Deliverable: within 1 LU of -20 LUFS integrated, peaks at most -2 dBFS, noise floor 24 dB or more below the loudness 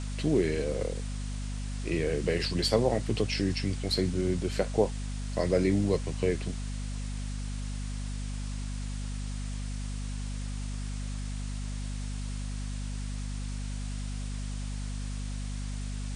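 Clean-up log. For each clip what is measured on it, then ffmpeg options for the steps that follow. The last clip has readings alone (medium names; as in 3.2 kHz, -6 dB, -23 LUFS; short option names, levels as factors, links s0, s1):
hum 50 Hz; highest harmonic 250 Hz; hum level -32 dBFS; noise floor -35 dBFS; noise floor target -57 dBFS; loudness -32.5 LUFS; peak level -11.0 dBFS; loudness target -20.0 LUFS
-> -af "bandreject=f=50:t=h:w=4,bandreject=f=100:t=h:w=4,bandreject=f=150:t=h:w=4,bandreject=f=200:t=h:w=4,bandreject=f=250:t=h:w=4"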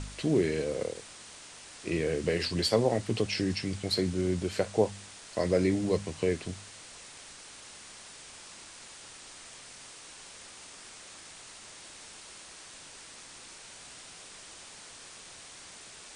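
hum not found; noise floor -49 dBFS; noise floor target -54 dBFS
-> -af "afftdn=nr=6:nf=-49"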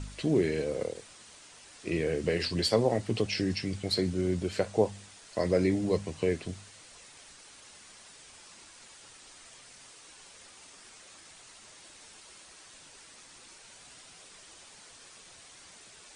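noise floor -53 dBFS; noise floor target -54 dBFS
-> -af "afftdn=nr=6:nf=-53"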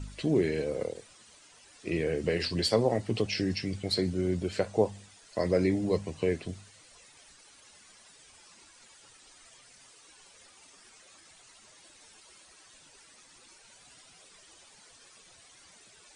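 noise floor -57 dBFS; loudness -30.0 LUFS; peak level -11.0 dBFS; loudness target -20.0 LUFS
-> -af "volume=3.16,alimiter=limit=0.794:level=0:latency=1"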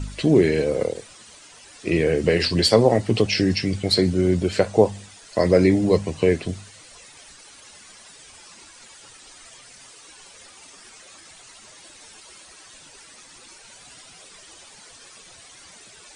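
loudness -20.0 LUFS; peak level -2.0 dBFS; noise floor -47 dBFS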